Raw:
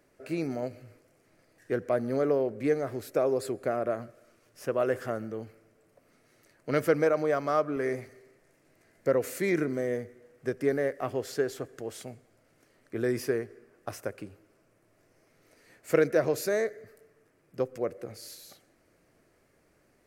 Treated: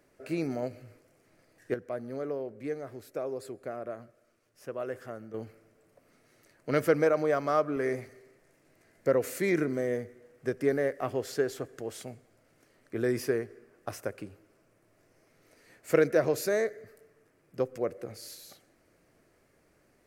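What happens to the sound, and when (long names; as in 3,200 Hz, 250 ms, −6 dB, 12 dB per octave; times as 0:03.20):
0:01.74–0:05.34: clip gain −8.5 dB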